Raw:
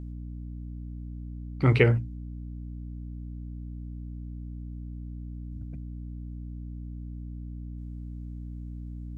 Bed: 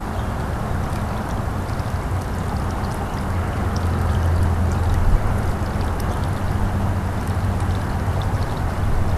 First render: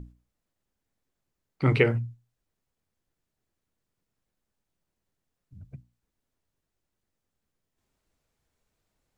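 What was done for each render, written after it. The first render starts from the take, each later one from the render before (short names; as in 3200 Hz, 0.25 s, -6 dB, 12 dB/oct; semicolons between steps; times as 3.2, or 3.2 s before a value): notches 60/120/180/240/300 Hz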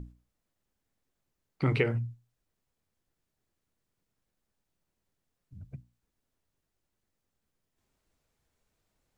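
compressor 2.5:1, threshold -25 dBFS, peak gain reduction 7 dB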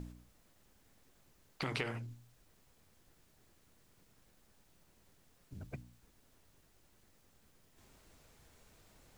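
compressor 2.5:1, threshold -34 dBFS, peak gain reduction 9 dB; spectral compressor 2:1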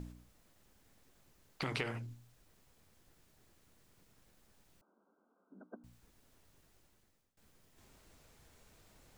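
4.81–5.84 brick-wall FIR band-pass 190–1600 Hz; 6.75–7.37 fade out, to -23.5 dB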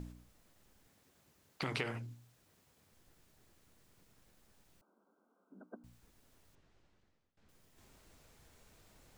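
0.87–2.92 HPF 75 Hz; 6.55–7.49 air absorption 130 m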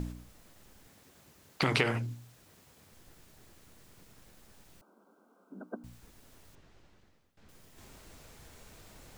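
gain +10 dB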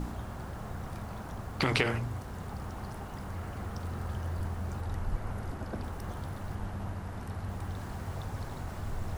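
add bed -16.5 dB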